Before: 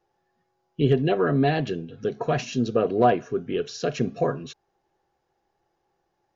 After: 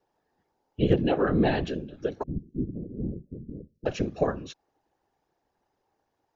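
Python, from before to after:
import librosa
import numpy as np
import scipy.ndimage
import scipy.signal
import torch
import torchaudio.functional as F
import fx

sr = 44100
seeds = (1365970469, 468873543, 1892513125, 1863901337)

y = fx.cheby2_lowpass(x, sr, hz=820.0, order=4, stop_db=60, at=(2.23, 3.86))
y = fx.whisperise(y, sr, seeds[0])
y = y * librosa.db_to_amplitude(-2.5)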